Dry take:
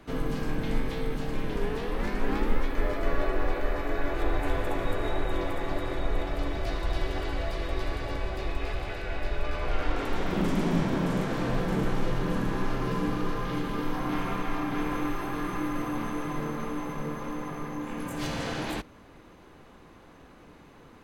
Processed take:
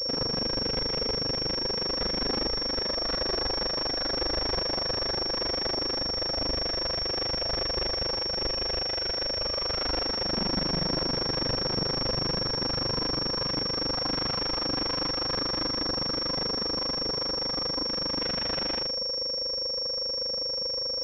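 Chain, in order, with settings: HPF 93 Hz 6 dB/oct; in parallel at +1.5 dB: compressor, threshold -36 dBFS, peak gain reduction 13 dB; on the sum: whine 520 Hz -31 dBFS; flange 2 Hz, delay 0.9 ms, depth 7.9 ms, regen +77%; on a send: flutter echo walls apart 9.5 m, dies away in 0.49 s; on the sum: careless resampling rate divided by 8×, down none, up zero stuff; pulse-width modulation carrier 5500 Hz; gain -7.5 dB

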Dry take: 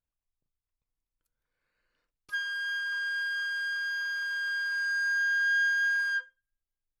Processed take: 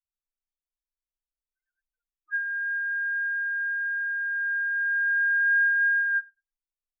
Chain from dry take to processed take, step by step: loudest bins only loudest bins 2; tilt shelf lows -10 dB, about 830 Hz

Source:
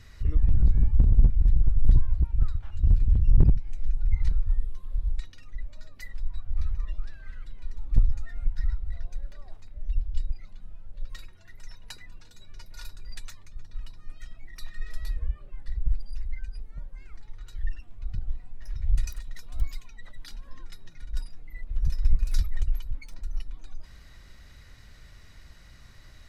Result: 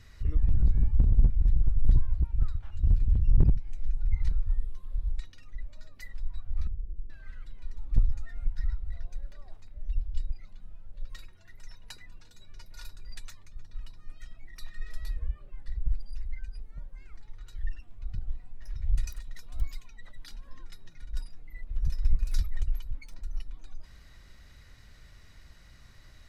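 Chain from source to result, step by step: 6.67–7.1 rippled Chebyshev low-pass 510 Hz, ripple 3 dB; gain -3 dB

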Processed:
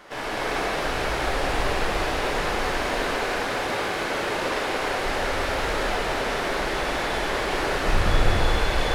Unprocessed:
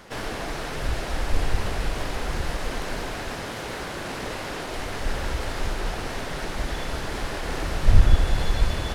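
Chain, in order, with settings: tone controls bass -11 dB, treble -6 dB; non-linear reverb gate 0.47 s flat, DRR -7 dB

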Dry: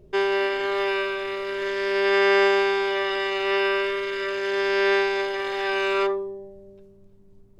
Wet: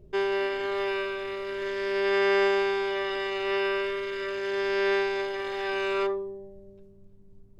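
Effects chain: low shelf 270 Hz +7 dB; gain -6 dB

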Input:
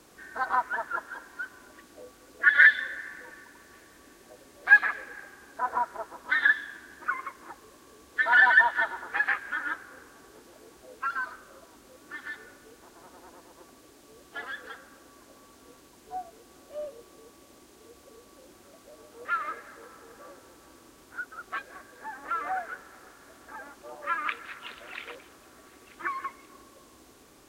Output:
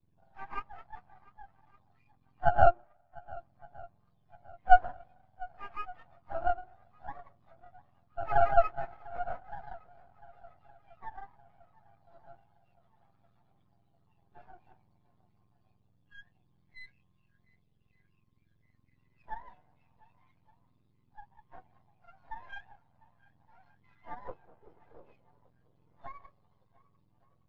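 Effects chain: spectrum mirrored in octaves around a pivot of 1100 Hz; 2.71–3.37 resonator 120 Hz, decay 0.22 s, harmonics all, mix 90%; on a send: swung echo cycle 1.166 s, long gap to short 1.5:1, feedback 52%, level -15.5 dB; on the sum: half-wave rectifier; spectral expander 1.5:1; gain +1.5 dB

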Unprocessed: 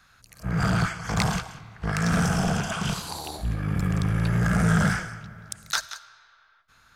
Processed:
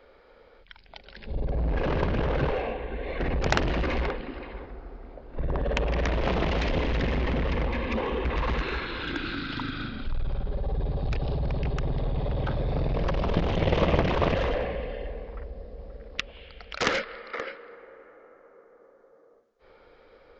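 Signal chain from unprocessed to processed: added harmonics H 7 -9 dB, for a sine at -7 dBFS; wide varispeed 0.341×

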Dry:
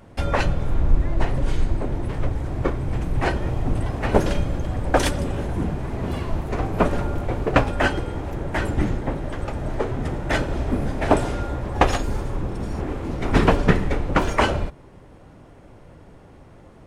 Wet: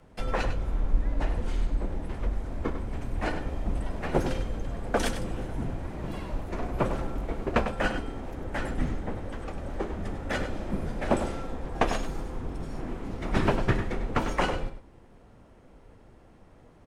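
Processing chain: outdoor echo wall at 17 m, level -9 dB; frequency shift -55 Hz; gain -7.5 dB

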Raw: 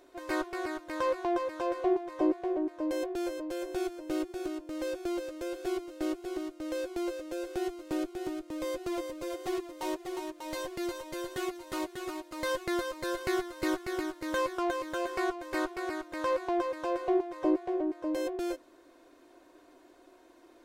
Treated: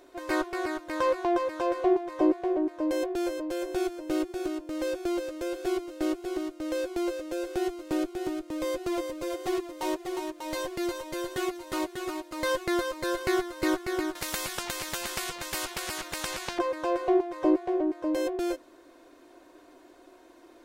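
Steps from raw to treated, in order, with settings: 14.15–16.59 spectral compressor 4:1; gain +4 dB

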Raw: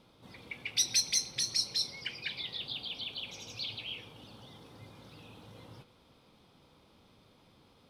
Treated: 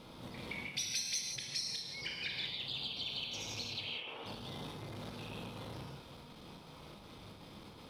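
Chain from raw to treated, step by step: 3.84–4.26 three-band isolator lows -21 dB, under 350 Hz, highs -16 dB, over 2900 Hz; compressor 4:1, threshold -49 dBFS, peak gain reduction 21 dB; chopper 2.7 Hz, depth 60%, duty 75%; non-linear reverb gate 0.21 s flat, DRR -0.5 dB; core saturation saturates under 1300 Hz; gain +8.5 dB

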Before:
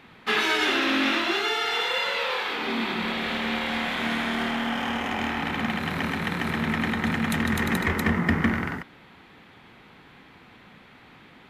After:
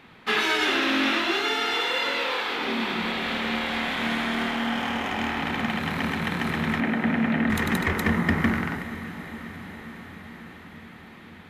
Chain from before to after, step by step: 6.8–7.5 speaker cabinet 150–2700 Hz, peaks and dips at 250 Hz +7 dB, 620 Hz +7 dB, 1100 Hz -5 dB; diffused feedback echo 0.475 s, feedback 73%, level -14 dB

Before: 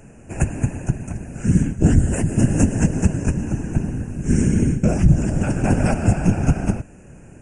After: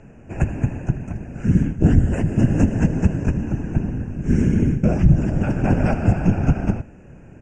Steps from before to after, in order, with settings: air absorption 160 m; on a send: echo 80 ms -17.5 dB

